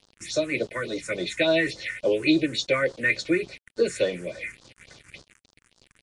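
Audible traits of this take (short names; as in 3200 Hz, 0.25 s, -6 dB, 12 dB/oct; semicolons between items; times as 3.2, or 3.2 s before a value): a quantiser's noise floor 8-bit, dither none; phasing stages 4, 3.5 Hz, lowest notch 630–2300 Hz; Vorbis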